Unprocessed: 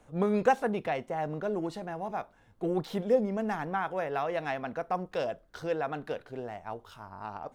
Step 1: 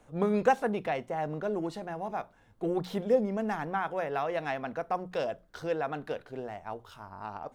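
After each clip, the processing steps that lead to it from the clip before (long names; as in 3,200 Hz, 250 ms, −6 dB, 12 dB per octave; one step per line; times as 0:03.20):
mains-hum notches 60/120/180 Hz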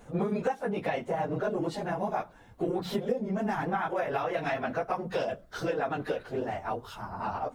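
random phases in long frames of 50 ms
downward compressor 10 to 1, threshold −33 dBFS, peak gain reduction 18 dB
level +7 dB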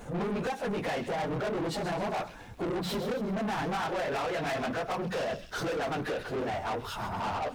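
soft clipping −29 dBFS, distortion −11 dB
delay with a high-pass on its return 131 ms, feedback 47%, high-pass 3,300 Hz, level −8 dB
leveller curve on the samples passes 2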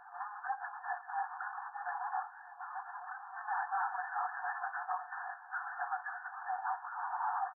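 brick-wall band-pass 700–1,800 Hz
double-tracking delay 23 ms −14 dB
feedback echo with a long and a short gap by turns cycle 1,006 ms, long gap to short 1.5 to 1, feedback 60%, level −19 dB
level −1.5 dB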